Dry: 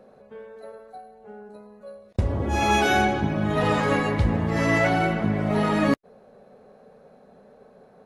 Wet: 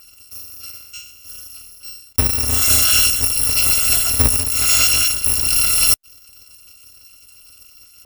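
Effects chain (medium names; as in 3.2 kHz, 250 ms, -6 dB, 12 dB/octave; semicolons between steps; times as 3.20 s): bit-reversed sample order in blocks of 256 samples; 4.43–5.29 s: expander -21 dBFS; trim +6.5 dB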